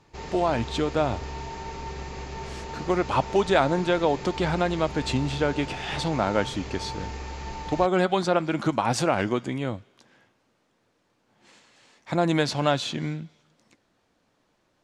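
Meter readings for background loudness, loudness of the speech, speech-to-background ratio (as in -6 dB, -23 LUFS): -36.5 LUFS, -26.0 LUFS, 10.5 dB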